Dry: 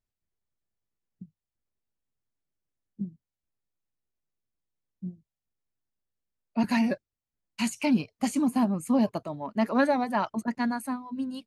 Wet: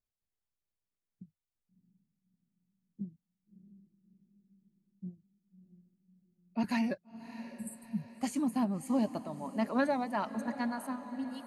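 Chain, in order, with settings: spectral replace 7.41–8.05 s, 230–7500 Hz; echo that smears into a reverb 646 ms, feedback 50%, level -13.5 dB; trim -6.5 dB

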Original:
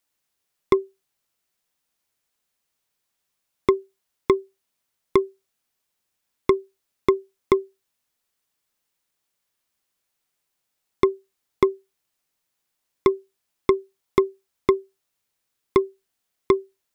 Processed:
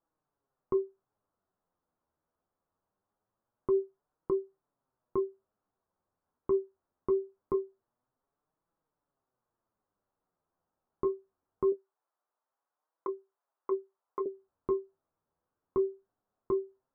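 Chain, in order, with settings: compressor with a negative ratio -17 dBFS, ratio -0.5; 11.72–14.26 s: high-pass 650 Hz 12 dB/octave; flange 0.23 Hz, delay 5.9 ms, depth 6.8 ms, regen +41%; peak limiter -25 dBFS, peak gain reduction 11 dB; inverse Chebyshev low-pass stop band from 2.5 kHz, stop band 40 dB; trim +4 dB

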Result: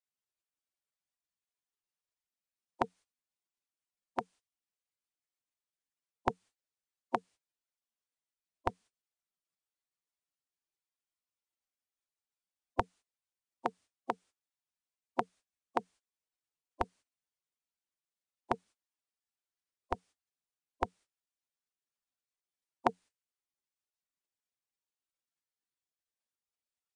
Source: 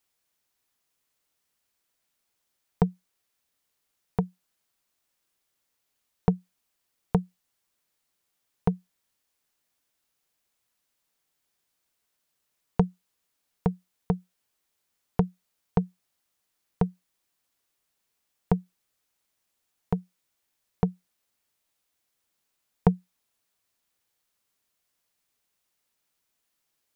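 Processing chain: spectral gate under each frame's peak -15 dB weak; trim +4.5 dB; MP3 96 kbps 22.05 kHz

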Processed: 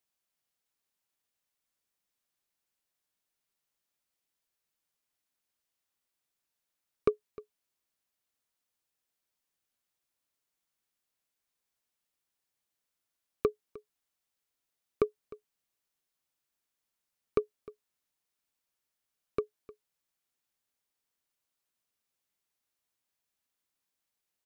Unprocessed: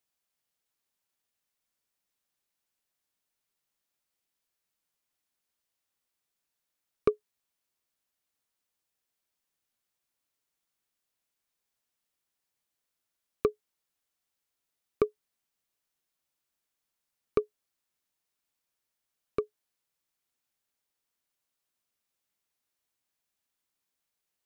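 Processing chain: delay 306 ms -20 dB; trim -1.5 dB

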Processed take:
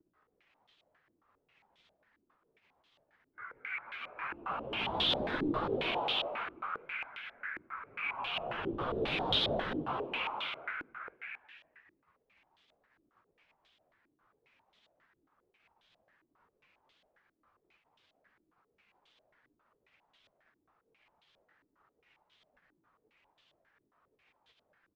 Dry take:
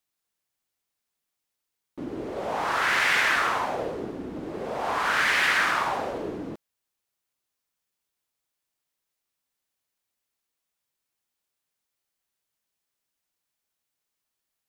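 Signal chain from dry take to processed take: ring modulator 1.8 kHz; crackle 220 per s -44 dBFS; whisper effect; flange 0.66 Hz, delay 0.1 ms, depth 2.8 ms, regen -70%; tremolo saw down 11 Hz, depth 45%; plain phase-vocoder stretch 1.7×; frequency-shifting echo 218 ms, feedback 48%, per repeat +110 Hz, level -3 dB; careless resampling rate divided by 3×, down none, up hold; step-sequenced low-pass 7.4 Hz 320–3400 Hz; trim -2.5 dB

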